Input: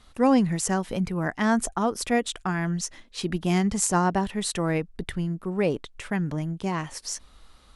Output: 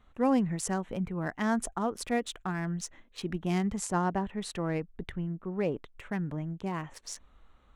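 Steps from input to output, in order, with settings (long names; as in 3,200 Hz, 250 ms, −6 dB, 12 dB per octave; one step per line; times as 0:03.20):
adaptive Wiener filter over 9 samples
0:03.76–0:05.95: high-shelf EQ 5,900 Hz −8.5 dB
level −6 dB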